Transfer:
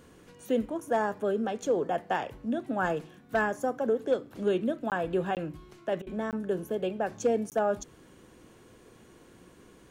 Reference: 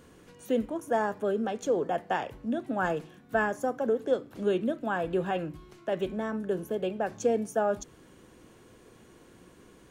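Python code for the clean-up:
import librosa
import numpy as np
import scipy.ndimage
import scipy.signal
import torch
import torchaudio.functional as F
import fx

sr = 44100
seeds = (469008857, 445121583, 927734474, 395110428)

y = fx.fix_declip(x, sr, threshold_db=-17.5)
y = fx.fix_interpolate(y, sr, at_s=(4.9, 5.35, 6.31, 7.5), length_ms=18.0)
y = fx.fix_interpolate(y, sr, at_s=(6.02,), length_ms=46.0)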